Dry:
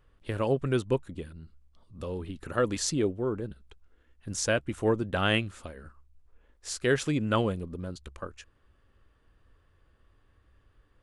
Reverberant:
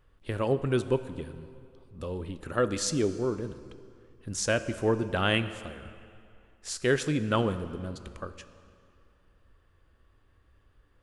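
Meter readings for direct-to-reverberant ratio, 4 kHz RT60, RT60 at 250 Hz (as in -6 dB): 11.5 dB, 1.9 s, 2.4 s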